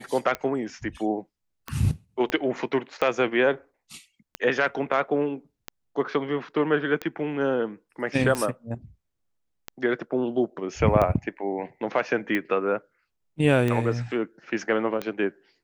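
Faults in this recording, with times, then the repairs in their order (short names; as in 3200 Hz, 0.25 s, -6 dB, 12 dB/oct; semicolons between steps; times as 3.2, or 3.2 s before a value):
tick 45 rpm -14 dBFS
2.3 pop -14 dBFS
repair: de-click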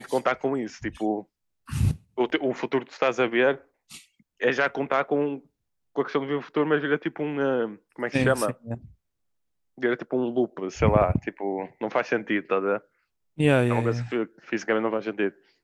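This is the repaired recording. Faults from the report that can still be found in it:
2.3 pop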